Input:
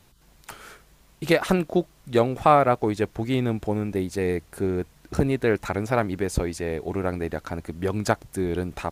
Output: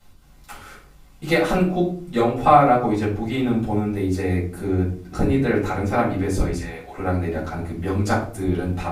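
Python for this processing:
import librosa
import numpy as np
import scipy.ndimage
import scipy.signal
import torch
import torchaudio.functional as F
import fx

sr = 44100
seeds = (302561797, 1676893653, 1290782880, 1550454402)

y = fx.highpass(x, sr, hz=880.0, slope=12, at=(6.57, 6.98))
y = fx.room_shoebox(y, sr, seeds[0], volume_m3=370.0, walls='furnished', distance_m=6.8)
y = y * 10.0 ** (-9.0 / 20.0)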